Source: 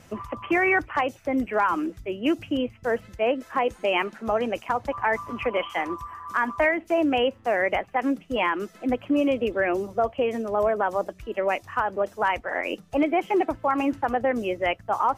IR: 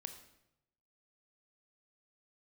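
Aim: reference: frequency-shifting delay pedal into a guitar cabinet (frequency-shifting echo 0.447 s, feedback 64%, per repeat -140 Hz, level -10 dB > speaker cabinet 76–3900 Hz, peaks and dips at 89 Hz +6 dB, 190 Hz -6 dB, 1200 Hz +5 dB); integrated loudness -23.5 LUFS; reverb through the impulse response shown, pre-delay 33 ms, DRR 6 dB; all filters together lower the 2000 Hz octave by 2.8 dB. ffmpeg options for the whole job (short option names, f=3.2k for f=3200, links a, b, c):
-filter_complex "[0:a]equalizer=f=2k:t=o:g=-4,asplit=2[a][b];[1:a]atrim=start_sample=2205,adelay=33[c];[b][c]afir=irnorm=-1:irlink=0,volume=-2dB[d];[a][d]amix=inputs=2:normalize=0,asplit=9[e][f][g][h][i][j][k][l][m];[f]adelay=447,afreqshift=-140,volume=-10dB[n];[g]adelay=894,afreqshift=-280,volume=-13.9dB[o];[h]adelay=1341,afreqshift=-420,volume=-17.8dB[p];[i]adelay=1788,afreqshift=-560,volume=-21.6dB[q];[j]adelay=2235,afreqshift=-700,volume=-25.5dB[r];[k]adelay=2682,afreqshift=-840,volume=-29.4dB[s];[l]adelay=3129,afreqshift=-980,volume=-33.3dB[t];[m]adelay=3576,afreqshift=-1120,volume=-37.1dB[u];[e][n][o][p][q][r][s][t][u]amix=inputs=9:normalize=0,highpass=76,equalizer=f=89:t=q:w=4:g=6,equalizer=f=190:t=q:w=4:g=-6,equalizer=f=1.2k:t=q:w=4:g=5,lowpass=f=3.9k:w=0.5412,lowpass=f=3.9k:w=1.3066,volume=1dB"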